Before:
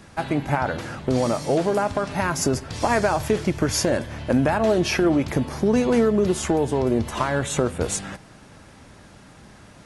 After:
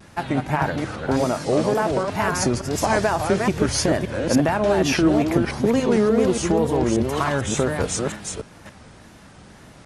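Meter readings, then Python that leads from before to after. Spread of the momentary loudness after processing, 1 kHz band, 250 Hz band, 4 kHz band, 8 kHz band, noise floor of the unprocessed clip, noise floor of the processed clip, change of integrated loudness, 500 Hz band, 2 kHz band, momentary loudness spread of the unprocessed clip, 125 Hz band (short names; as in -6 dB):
7 LU, +1.5 dB, +1.5 dB, +2.0 dB, +1.5 dB, -48 dBFS, -47 dBFS, +1.5 dB, +1.0 dB, +1.5 dB, 7 LU, +1.0 dB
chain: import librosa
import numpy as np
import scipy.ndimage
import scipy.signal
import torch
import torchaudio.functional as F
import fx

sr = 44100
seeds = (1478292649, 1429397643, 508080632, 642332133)

y = fx.reverse_delay(x, sr, ms=290, wet_db=-4)
y = fx.cheby_harmonics(y, sr, harmonics=(6,), levels_db=(-42,), full_scale_db=-7.0)
y = fx.wow_flutter(y, sr, seeds[0], rate_hz=2.1, depth_cents=130.0)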